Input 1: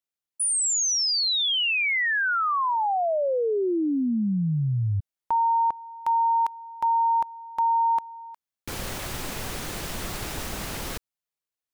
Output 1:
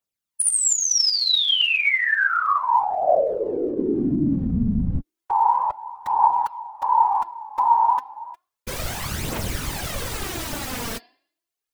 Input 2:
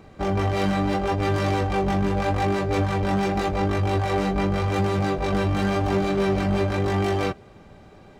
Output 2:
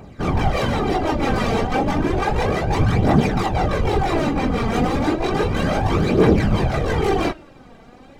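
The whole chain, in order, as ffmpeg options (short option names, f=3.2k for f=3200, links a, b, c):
-af "bandreject=f=343.9:t=h:w=4,bandreject=f=687.8:t=h:w=4,bandreject=f=1.0317k:t=h:w=4,bandreject=f=1.3756k:t=h:w=4,bandreject=f=1.7195k:t=h:w=4,bandreject=f=2.0634k:t=h:w=4,bandreject=f=2.4073k:t=h:w=4,bandreject=f=2.7512k:t=h:w=4,bandreject=f=3.0951k:t=h:w=4,bandreject=f=3.439k:t=h:w=4,bandreject=f=3.7829k:t=h:w=4,bandreject=f=4.1268k:t=h:w=4,bandreject=f=4.4707k:t=h:w=4,bandreject=f=4.8146k:t=h:w=4,bandreject=f=5.1585k:t=h:w=4,afftfilt=real='hypot(re,im)*cos(2*PI*random(0))':imag='hypot(re,im)*sin(2*PI*random(1))':win_size=512:overlap=0.75,aphaser=in_gain=1:out_gain=1:delay=4.5:decay=0.51:speed=0.32:type=triangular,volume=8.5dB"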